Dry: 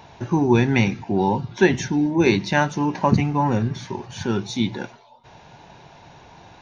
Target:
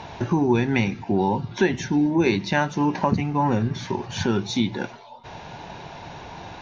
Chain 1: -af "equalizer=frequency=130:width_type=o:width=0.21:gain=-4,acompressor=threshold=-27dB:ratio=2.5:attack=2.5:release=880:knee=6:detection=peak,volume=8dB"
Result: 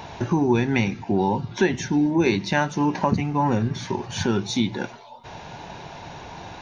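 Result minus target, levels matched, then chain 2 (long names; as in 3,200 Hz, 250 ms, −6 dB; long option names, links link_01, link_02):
8,000 Hz band +2.5 dB
-af "lowpass=6300,equalizer=frequency=130:width_type=o:width=0.21:gain=-4,acompressor=threshold=-27dB:ratio=2.5:attack=2.5:release=880:knee=6:detection=peak,volume=8dB"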